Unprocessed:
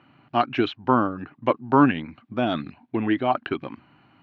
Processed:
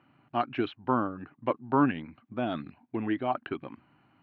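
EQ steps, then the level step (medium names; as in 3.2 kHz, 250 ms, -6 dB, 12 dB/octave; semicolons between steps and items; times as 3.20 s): Bessel low-pass 3 kHz, order 2; -7.0 dB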